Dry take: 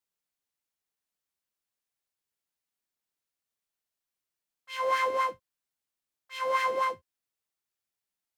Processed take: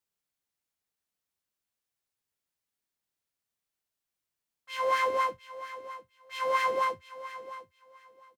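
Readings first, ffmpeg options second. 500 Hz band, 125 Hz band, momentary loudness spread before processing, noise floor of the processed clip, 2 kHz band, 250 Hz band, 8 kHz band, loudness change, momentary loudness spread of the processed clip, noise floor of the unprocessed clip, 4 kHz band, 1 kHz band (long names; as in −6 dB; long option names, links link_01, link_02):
+0.5 dB, can't be measured, 15 LU, below −85 dBFS, 0.0 dB, +1.5 dB, 0.0 dB, −1.0 dB, 18 LU, below −85 dBFS, 0.0 dB, +0.5 dB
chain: -filter_complex "[0:a]equalizer=frequency=94:width=0.49:gain=4,asplit=2[link_01][link_02];[link_02]aecho=0:1:703|1406:0.188|0.0358[link_03];[link_01][link_03]amix=inputs=2:normalize=0"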